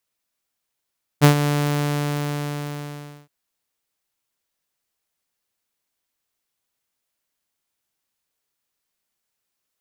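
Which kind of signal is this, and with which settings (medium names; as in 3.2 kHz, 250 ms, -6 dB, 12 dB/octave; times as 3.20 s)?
ADSR saw 146 Hz, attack 33 ms, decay 100 ms, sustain -10.5 dB, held 0.26 s, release 1810 ms -5 dBFS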